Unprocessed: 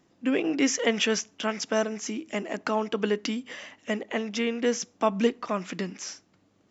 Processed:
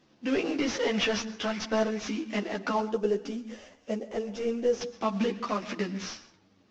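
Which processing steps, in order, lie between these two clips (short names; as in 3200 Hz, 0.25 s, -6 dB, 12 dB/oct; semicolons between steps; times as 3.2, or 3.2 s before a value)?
CVSD 32 kbps; 2.8–4.81 graphic EQ 125/250/500/1000/2000/4000 Hz -6/-5/+3/-8/-11/-11 dB; limiter -18.5 dBFS, peak gain reduction 7.5 dB; plate-style reverb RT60 0.54 s, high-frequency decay 0.6×, pre-delay 0.105 s, DRR 14.5 dB; ensemble effect; gain +4 dB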